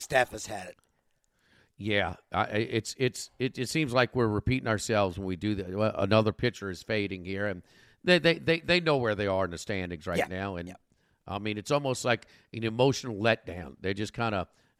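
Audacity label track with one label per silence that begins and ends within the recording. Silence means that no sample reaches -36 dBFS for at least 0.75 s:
0.700000	1.810000	silence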